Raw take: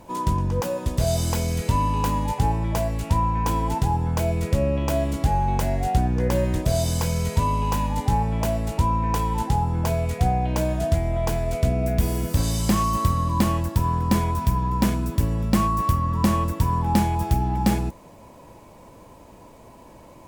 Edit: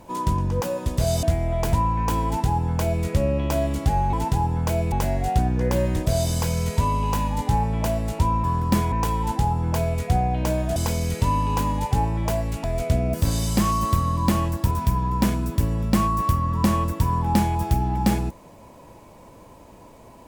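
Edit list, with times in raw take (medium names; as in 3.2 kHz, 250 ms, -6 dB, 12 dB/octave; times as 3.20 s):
1.23–3.11 s: swap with 10.87–11.37 s
3.63–4.42 s: copy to 5.51 s
11.87–12.26 s: delete
13.83–14.31 s: move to 9.03 s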